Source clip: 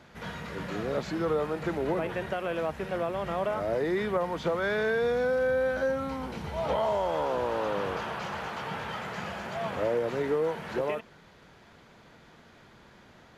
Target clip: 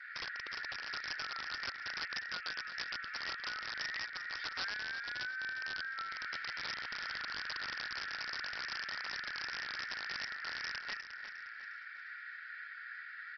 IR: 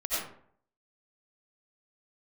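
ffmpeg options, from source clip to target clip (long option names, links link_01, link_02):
-filter_complex "[0:a]asuperpass=centerf=3600:order=20:qfactor=0.52,highshelf=frequency=2400:width_type=q:width=3:gain=-10,aecho=1:1:2.2:0.4,acompressor=threshold=-48dB:ratio=16,aresample=11025,aeval=exprs='(mod(158*val(0)+1,2)-1)/158':channel_layout=same,aresample=44100,aecho=1:1:356|712|1068|1424:0.299|0.119|0.0478|0.0191,acrossover=split=3400[link_01][link_02];[link_02]acontrast=52[link_03];[link_01][link_03]amix=inputs=2:normalize=0,volume=9dB" -ar 48000 -c:a libopus -b:a 32k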